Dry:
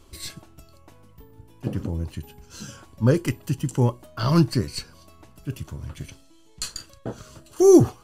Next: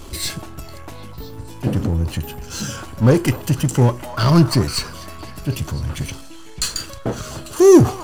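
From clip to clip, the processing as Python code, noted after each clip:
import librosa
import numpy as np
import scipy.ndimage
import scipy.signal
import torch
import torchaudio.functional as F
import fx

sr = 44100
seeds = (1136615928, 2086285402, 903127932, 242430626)

y = fx.power_curve(x, sr, exponent=0.7)
y = fx.echo_stepped(y, sr, ms=250, hz=960.0, octaves=0.7, feedback_pct=70, wet_db=-9.5)
y = F.gain(torch.from_numpy(y), 2.5).numpy()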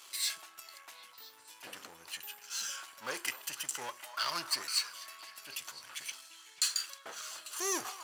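y = scipy.signal.sosfilt(scipy.signal.butter(2, 1500.0, 'highpass', fs=sr, output='sos'), x)
y = F.gain(torch.from_numpy(y), -7.5).numpy()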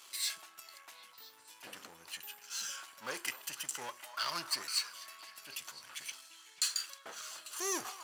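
y = fx.peak_eq(x, sr, hz=190.0, db=3.0, octaves=0.81)
y = F.gain(torch.from_numpy(y), -2.0).numpy()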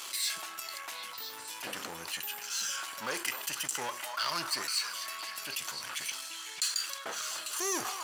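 y = fx.env_flatten(x, sr, amount_pct=50)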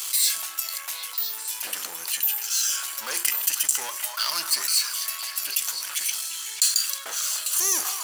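y = fx.riaa(x, sr, side='recording')
y = F.gain(torch.from_numpy(y), 1.0).numpy()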